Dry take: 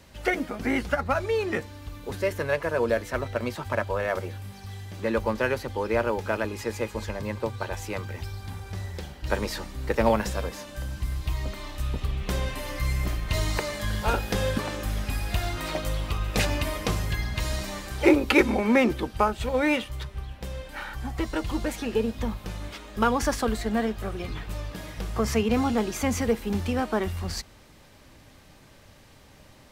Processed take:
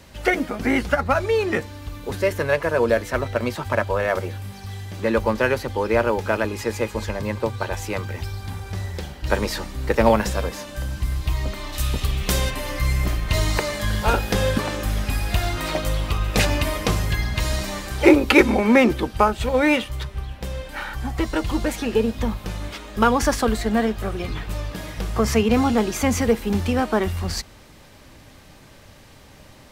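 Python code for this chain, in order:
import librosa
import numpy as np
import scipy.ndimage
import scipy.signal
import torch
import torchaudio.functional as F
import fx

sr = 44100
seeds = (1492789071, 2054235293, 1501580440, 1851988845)

y = fx.high_shelf(x, sr, hz=fx.line((11.72, 2500.0), (12.49, 3900.0)), db=11.0, at=(11.72, 12.49), fade=0.02)
y = F.gain(torch.from_numpy(y), 5.5).numpy()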